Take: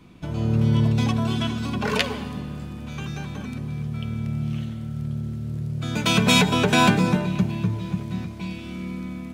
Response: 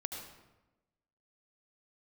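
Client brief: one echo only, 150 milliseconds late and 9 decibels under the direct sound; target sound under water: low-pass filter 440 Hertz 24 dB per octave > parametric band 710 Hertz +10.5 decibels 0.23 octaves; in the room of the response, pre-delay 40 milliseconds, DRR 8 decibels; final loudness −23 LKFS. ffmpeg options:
-filter_complex "[0:a]aecho=1:1:150:0.355,asplit=2[link_01][link_02];[1:a]atrim=start_sample=2205,adelay=40[link_03];[link_02][link_03]afir=irnorm=-1:irlink=0,volume=-8dB[link_04];[link_01][link_04]amix=inputs=2:normalize=0,lowpass=frequency=440:width=0.5412,lowpass=frequency=440:width=1.3066,equalizer=frequency=710:width_type=o:width=0.23:gain=10.5,volume=1.5dB"

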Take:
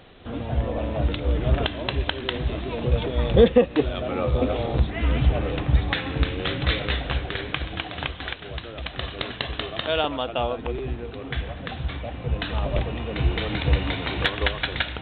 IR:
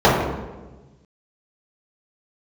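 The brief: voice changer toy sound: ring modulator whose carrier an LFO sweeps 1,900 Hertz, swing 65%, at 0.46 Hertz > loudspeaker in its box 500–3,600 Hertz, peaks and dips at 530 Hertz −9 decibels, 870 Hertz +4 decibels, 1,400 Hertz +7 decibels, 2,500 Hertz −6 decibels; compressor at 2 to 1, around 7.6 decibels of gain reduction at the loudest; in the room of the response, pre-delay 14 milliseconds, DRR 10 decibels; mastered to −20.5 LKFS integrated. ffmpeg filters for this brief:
-filter_complex "[0:a]acompressor=threshold=-24dB:ratio=2,asplit=2[link_01][link_02];[1:a]atrim=start_sample=2205,adelay=14[link_03];[link_02][link_03]afir=irnorm=-1:irlink=0,volume=-38dB[link_04];[link_01][link_04]amix=inputs=2:normalize=0,aeval=exprs='val(0)*sin(2*PI*1900*n/s+1900*0.65/0.46*sin(2*PI*0.46*n/s))':channel_layout=same,highpass=500,equalizer=frequency=530:width_type=q:width=4:gain=-9,equalizer=frequency=870:width_type=q:width=4:gain=4,equalizer=frequency=1400:width_type=q:width=4:gain=7,equalizer=frequency=2500:width_type=q:width=4:gain=-6,lowpass=frequency=3600:width=0.5412,lowpass=frequency=3600:width=1.3066,volume=7.5dB"

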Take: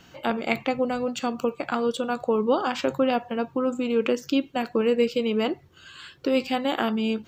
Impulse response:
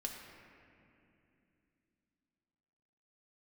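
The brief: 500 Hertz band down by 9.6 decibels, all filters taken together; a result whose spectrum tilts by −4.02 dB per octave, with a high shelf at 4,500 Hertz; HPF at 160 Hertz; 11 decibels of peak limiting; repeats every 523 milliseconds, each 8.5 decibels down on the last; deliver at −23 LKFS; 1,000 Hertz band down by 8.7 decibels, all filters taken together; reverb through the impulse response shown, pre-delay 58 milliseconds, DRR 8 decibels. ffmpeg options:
-filter_complex "[0:a]highpass=160,equalizer=frequency=500:width_type=o:gain=-8.5,equalizer=frequency=1000:width_type=o:gain=-9,highshelf=frequency=4500:gain=3,alimiter=limit=-21dB:level=0:latency=1,aecho=1:1:523|1046|1569|2092:0.376|0.143|0.0543|0.0206,asplit=2[link_01][link_02];[1:a]atrim=start_sample=2205,adelay=58[link_03];[link_02][link_03]afir=irnorm=-1:irlink=0,volume=-7.5dB[link_04];[link_01][link_04]amix=inputs=2:normalize=0,volume=8dB"

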